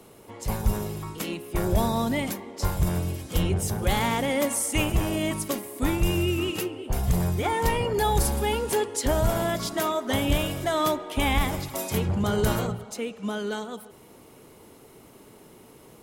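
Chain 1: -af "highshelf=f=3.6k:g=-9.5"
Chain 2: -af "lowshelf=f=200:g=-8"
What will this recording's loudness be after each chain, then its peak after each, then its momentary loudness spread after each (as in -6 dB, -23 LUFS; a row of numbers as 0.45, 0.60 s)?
-27.5, -28.5 LUFS; -11.5, -13.0 dBFS; 8, 9 LU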